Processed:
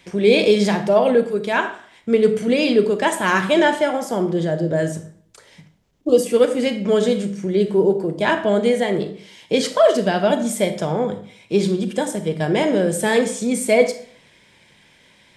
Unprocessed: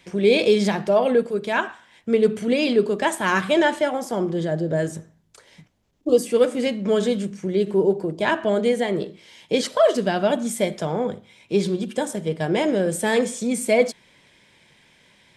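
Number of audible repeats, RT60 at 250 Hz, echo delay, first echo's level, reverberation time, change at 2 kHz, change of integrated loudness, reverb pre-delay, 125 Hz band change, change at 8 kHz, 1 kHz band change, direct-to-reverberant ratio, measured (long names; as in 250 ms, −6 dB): no echo audible, 0.55 s, no echo audible, no echo audible, 0.55 s, +3.0 dB, +3.0 dB, 28 ms, +3.5 dB, +3.0 dB, +3.0 dB, 10.0 dB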